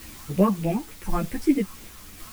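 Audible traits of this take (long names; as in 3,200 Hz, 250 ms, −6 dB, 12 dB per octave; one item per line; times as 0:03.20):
phaser sweep stages 4, 3.4 Hz, lowest notch 460–1,100 Hz
a quantiser's noise floor 8 bits, dither triangular
tremolo saw down 0.92 Hz, depth 30%
a shimmering, thickened sound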